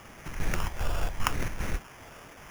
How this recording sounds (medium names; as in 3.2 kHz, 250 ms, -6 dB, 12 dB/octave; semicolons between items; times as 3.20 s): chopped level 2.5 Hz, depth 65%, duty 70%; a quantiser's noise floor 8-bit, dither triangular; phasing stages 8, 0.8 Hz, lowest notch 270–1200 Hz; aliases and images of a low sample rate 4.1 kHz, jitter 0%